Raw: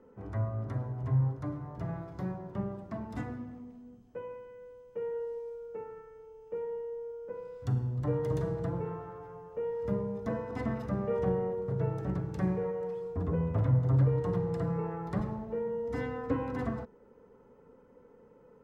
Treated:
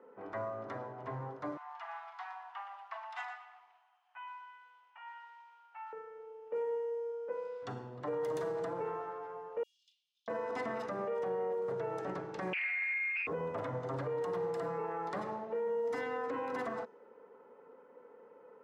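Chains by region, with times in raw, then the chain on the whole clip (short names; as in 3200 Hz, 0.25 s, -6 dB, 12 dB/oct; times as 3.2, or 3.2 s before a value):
1.57–5.93 steep high-pass 720 Hz 96 dB/oct + bell 2900 Hz +7 dB 0.55 oct + lo-fi delay 0.118 s, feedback 35%, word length 11-bit, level -11 dB
9.63–10.28 steep high-pass 3000 Hz 72 dB/oct + doubler 36 ms -8 dB
12.53–13.27 inverted band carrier 2600 Hz + Doppler distortion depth 0.63 ms
whole clip: HPF 480 Hz 12 dB/oct; low-pass opened by the level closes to 2300 Hz, open at -35.5 dBFS; limiter -34 dBFS; gain +5 dB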